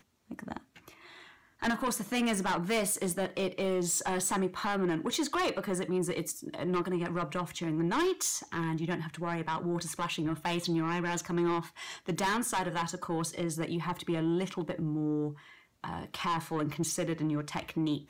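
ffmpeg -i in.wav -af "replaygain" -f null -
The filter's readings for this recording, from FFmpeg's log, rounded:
track_gain = +13.8 dB
track_peak = 0.052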